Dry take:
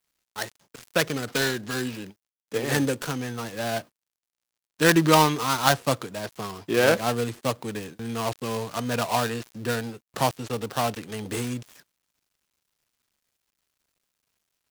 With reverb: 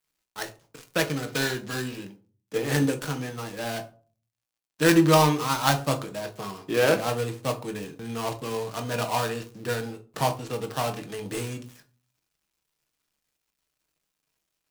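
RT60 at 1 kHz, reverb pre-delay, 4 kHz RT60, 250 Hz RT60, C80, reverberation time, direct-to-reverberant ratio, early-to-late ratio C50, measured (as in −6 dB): 0.35 s, 6 ms, 0.25 s, 0.50 s, 20.5 dB, 0.40 s, 4.5 dB, 15.0 dB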